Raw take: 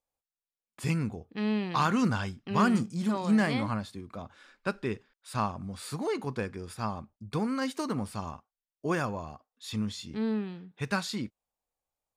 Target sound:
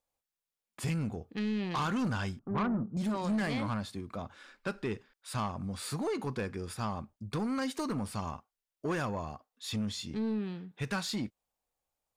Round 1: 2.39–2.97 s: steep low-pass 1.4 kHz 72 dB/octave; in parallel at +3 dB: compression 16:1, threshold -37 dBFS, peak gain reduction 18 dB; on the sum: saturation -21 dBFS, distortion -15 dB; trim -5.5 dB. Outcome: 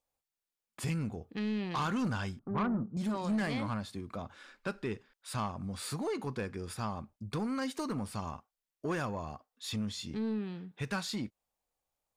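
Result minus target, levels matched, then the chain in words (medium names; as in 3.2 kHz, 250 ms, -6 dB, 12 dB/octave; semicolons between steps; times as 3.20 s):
compression: peak gain reduction +6 dB
2.39–2.97 s: steep low-pass 1.4 kHz 72 dB/octave; in parallel at +3 dB: compression 16:1, threshold -30.5 dBFS, peak gain reduction 12 dB; on the sum: saturation -21 dBFS, distortion -13 dB; trim -5.5 dB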